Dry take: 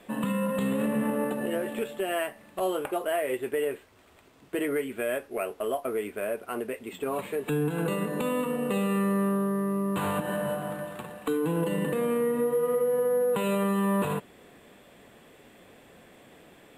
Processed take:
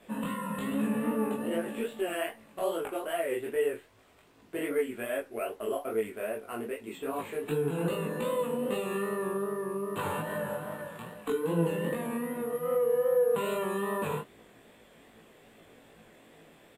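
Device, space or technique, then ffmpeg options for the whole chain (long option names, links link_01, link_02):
double-tracked vocal: -filter_complex "[0:a]asplit=2[link_01][link_02];[link_02]adelay=18,volume=-2.5dB[link_03];[link_01][link_03]amix=inputs=2:normalize=0,flanger=delay=18:depth=8:speed=2.5,volume=-2dB"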